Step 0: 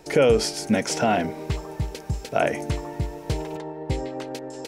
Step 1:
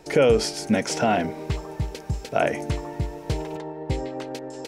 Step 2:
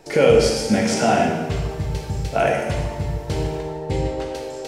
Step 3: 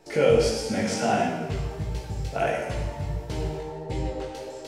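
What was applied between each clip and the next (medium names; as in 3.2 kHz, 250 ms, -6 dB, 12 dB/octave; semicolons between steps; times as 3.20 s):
treble shelf 9.3 kHz -4.5 dB
plate-style reverb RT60 1.2 s, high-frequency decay 0.95×, DRR -2 dB
chorus 1.5 Hz, delay 16 ms, depth 5.8 ms; trim -3.5 dB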